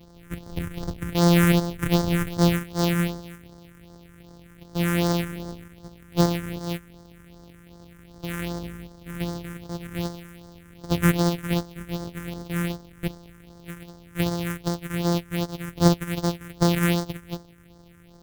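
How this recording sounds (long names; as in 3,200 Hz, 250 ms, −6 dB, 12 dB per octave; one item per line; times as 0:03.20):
a buzz of ramps at a fixed pitch in blocks of 256 samples
phaser sweep stages 4, 2.6 Hz, lowest notch 690–2,500 Hz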